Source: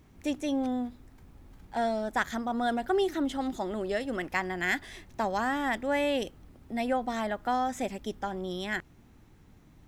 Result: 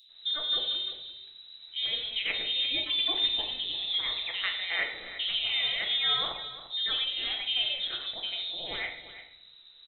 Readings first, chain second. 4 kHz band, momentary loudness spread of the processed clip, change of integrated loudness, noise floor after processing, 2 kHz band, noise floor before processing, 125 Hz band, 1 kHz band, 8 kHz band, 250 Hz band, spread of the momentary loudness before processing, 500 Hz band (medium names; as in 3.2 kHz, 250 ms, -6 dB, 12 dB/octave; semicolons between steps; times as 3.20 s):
+18.0 dB, 12 LU, +2.5 dB, -54 dBFS, -0.5 dB, -57 dBFS, under -10 dB, -12.5 dB, under -30 dB, -21.5 dB, 7 LU, -15.5 dB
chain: on a send: delay 345 ms -13.5 dB; on the sum: frequency inversion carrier 3.9 kHz; bands offset in time highs, lows 90 ms, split 2.8 kHz; simulated room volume 170 m³, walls mixed, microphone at 0.68 m